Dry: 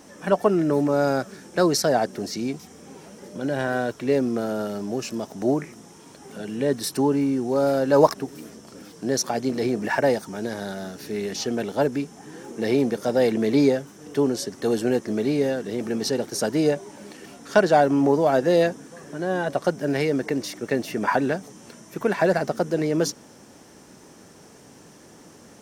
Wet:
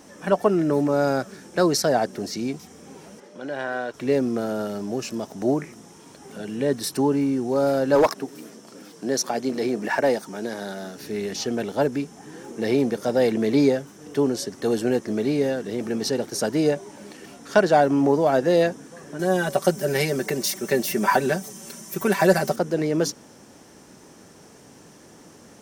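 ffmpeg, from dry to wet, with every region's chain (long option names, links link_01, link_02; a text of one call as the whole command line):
ffmpeg -i in.wav -filter_complex "[0:a]asettb=1/sr,asplit=3[link_01][link_02][link_03];[link_01]atrim=end=3.204[link_04];[link_02]atrim=start=3.2:end=3.94,asetpts=PTS-STARTPTS,afade=type=in:duration=0.004:curve=qsin,afade=type=out:start_time=0.736:duration=0.004:curve=qsin,highpass=frequency=670:poles=1,aemphasis=mode=reproduction:type=50fm[link_05];[link_03]atrim=start=3.936[link_06];[link_04][link_05]acrossfade=duration=0.004:curve1=hsin:curve2=qsin[link_07];[link_07][link_06]acrossfade=duration=0.004:curve1=qsin:curve2=hsin,asettb=1/sr,asplit=3[link_08][link_09][link_10];[link_08]atrim=end=7.954[link_11];[link_09]atrim=start=7.95:end=10.97,asetpts=PTS-STARTPTS,afade=type=in:duration=0.004:curve=qsin,afade=type=out:start_time=3.016:duration=0.004:curve=qsin,highpass=180,volume=11.5dB,asoftclip=hard,volume=-11.5dB[link_12];[link_10]atrim=start=10.966[link_13];[link_11][link_12]acrossfade=duration=0.004:curve1=hsin:curve2=qsin[link_14];[link_14][link_13]acrossfade=duration=0.004:curve1=qsin:curve2=hsin,asettb=1/sr,asplit=3[link_15][link_16][link_17];[link_15]atrim=end=19.194[link_18];[link_16]atrim=start=19.19:end=22.56,asetpts=PTS-STARTPTS,afade=type=in:duration=0.004:curve=qsin,afade=type=out:start_time=3.366:duration=0.004:curve=qsin,aemphasis=mode=production:type=50fm,aecho=1:1:5.2:0.78,atrim=end_sample=148617[link_19];[link_17]atrim=start=22.556[link_20];[link_18][link_19]acrossfade=duration=0.004:curve1=hsin:curve2=qsin[link_21];[link_21][link_20]acrossfade=duration=0.004:curve1=qsin:curve2=hsin" out.wav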